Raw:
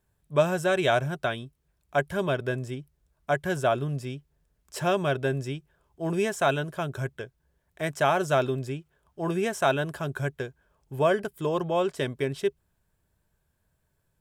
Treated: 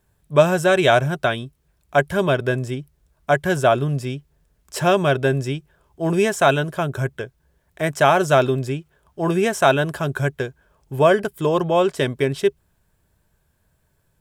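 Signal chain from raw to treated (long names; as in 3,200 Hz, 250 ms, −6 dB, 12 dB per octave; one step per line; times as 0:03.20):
0:06.79–0:07.93: dynamic equaliser 4,400 Hz, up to −4 dB, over −47 dBFS, Q 0.84
level +8 dB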